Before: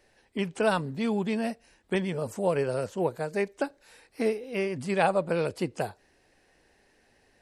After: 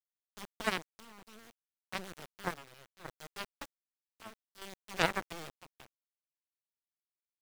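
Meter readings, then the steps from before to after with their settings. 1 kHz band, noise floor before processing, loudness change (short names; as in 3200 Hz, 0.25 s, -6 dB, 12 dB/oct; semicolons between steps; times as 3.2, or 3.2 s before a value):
-9.5 dB, -65 dBFS, -9.5 dB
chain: added harmonics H 2 -31 dB, 3 -9 dB, 5 -38 dB, 7 -27 dB, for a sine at -10 dBFS; sample gate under -39 dBFS; chopper 0.65 Hz, depth 65%, duty 65%; gain +1 dB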